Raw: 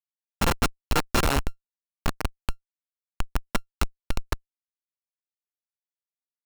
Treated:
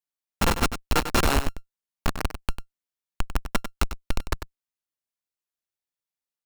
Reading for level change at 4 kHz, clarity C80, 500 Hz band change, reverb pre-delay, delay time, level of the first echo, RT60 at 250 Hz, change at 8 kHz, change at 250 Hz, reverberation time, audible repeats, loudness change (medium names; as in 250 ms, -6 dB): +1.5 dB, no reverb, +1.5 dB, no reverb, 97 ms, -10.5 dB, no reverb, +1.5 dB, +1.5 dB, no reverb, 1, +1.0 dB